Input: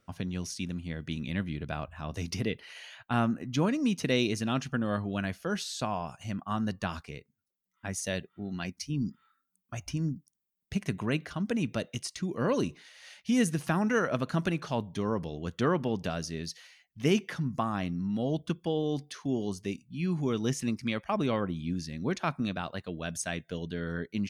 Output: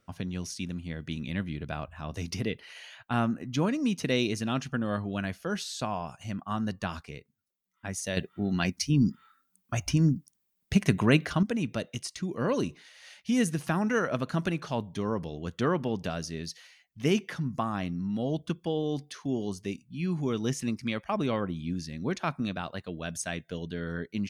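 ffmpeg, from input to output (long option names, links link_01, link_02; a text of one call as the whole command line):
ffmpeg -i in.wav -filter_complex "[0:a]asplit=3[link_01][link_02][link_03];[link_01]atrim=end=8.172[link_04];[link_02]atrim=start=8.168:end=11.432,asetpts=PTS-STARTPTS,volume=8dB[link_05];[link_03]atrim=start=11.428[link_06];[link_04][link_05]acrossfade=duration=0.004:curve1=hsin:curve2=hsin[link_07];[link_07][link_06]acrossfade=duration=0.004:curve1=hsin:curve2=hsin" out.wav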